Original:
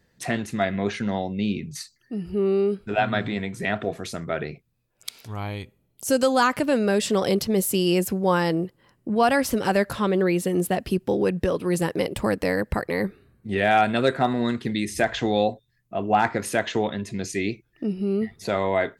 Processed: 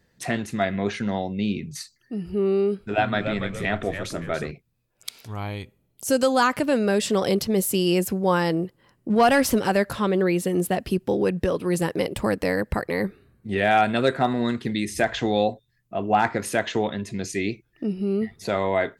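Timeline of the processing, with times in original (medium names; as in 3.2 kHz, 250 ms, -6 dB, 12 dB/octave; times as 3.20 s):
2.69–4.51 s: frequency-shifting echo 285 ms, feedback 36%, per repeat -100 Hz, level -8 dB
9.10–9.60 s: waveshaping leveller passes 1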